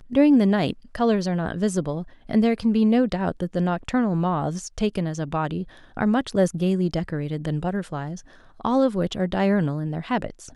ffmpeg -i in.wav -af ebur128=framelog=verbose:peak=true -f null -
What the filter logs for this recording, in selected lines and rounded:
Integrated loudness:
  I:         -23.5 LUFS
  Threshold: -33.7 LUFS
Loudness range:
  LRA:         2.8 LU
  Threshold: -44.2 LUFS
  LRA low:   -25.5 LUFS
  LRA high:  -22.7 LUFS
True peak:
  Peak:       -6.5 dBFS